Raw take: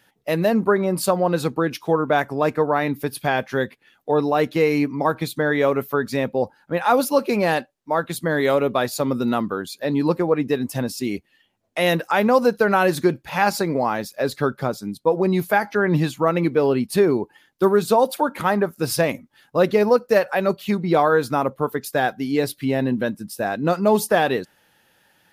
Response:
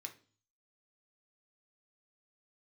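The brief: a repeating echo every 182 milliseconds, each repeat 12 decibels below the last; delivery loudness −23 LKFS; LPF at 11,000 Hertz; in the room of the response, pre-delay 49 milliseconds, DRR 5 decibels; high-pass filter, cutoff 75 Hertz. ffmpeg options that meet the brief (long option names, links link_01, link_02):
-filter_complex "[0:a]highpass=75,lowpass=11000,aecho=1:1:182|364|546:0.251|0.0628|0.0157,asplit=2[link_01][link_02];[1:a]atrim=start_sample=2205,adelay=49[link_03];[link_02][link_03]afir=irnorm=-1:irlink=0,volume=-1dB[link_04];[link_01][link_04]amix=inputs=2:normalize=0,volume=-3dB"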